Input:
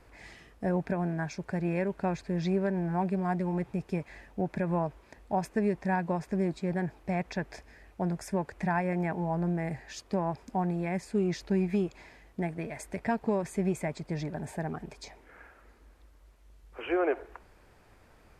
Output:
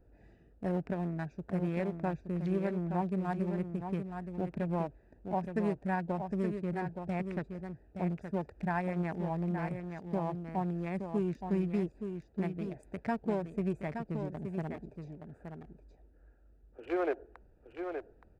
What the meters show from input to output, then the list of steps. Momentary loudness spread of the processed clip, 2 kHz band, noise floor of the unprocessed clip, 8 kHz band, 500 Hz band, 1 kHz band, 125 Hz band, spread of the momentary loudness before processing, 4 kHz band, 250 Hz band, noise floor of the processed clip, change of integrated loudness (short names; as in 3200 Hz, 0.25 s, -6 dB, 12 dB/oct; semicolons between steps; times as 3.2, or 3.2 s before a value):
9 LU, -5.5 dB, -59 dBFS, under -15 dB, -4.0 dB, -4.0 dB, -3.0 dB, 10 LU, under -10 dB, -3.0 dB, -63 dBFS, -3.5 dB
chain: Wiener smoothing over 41 samples; high shelf 7200 Hz +5 dB; echo 0.871 s -7 dB; gain -3.5 dB